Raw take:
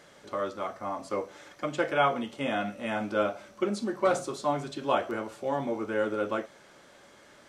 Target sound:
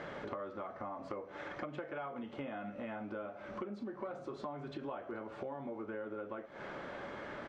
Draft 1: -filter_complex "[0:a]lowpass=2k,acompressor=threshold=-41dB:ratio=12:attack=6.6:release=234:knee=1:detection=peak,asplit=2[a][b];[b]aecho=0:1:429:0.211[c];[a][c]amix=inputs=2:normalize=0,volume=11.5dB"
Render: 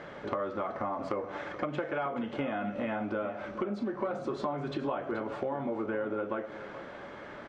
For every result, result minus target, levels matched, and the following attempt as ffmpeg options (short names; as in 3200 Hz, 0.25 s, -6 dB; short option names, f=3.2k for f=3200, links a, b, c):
compressor: peak gain reduction -9 dB; echo-to-direct +11.5 dB
-filter_complex "[0:a]lowpass=2k,acompressor=threshold=-51dB:ratio=12:attack=6.6:release=234:knee=1:detection=peak,asplit=2[a][b];[b]aecho=0:1:429:0.211[c];[a][c]amix=inputs=2:normalize=0,volume=11.5dB"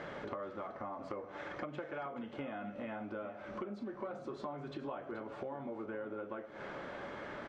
echo-to-direct +11.5 dB
-filter_complex "[0:a]lowpass=2k,acompressor=threshold=-51dB:ratio=12:attack=6.6:release=234:knee=1:detection=peak,asplit=2[a][b];[b]aecho=0:1:429:0.0562[c];[a][c]amix=inputs=2:normalize=0,volume=11.5dB"